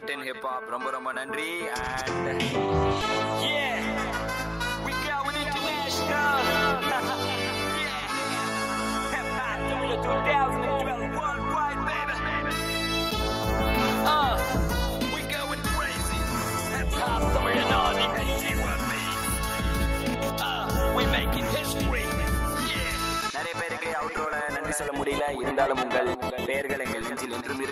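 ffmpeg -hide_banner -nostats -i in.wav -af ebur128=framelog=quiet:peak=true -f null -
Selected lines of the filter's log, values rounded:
Integrated loudness:
  I:         -27.0 LUFS
  Threshold: -36.9 LUFS
Loudness range:
  LRA:         2.2 LU
  Threshold: -46.8 LUFS
  LRA low:   -27.9 LUFS
  LRA high:  -25.7 LUFS
True peak:
  Peak:      -12.0 dBFS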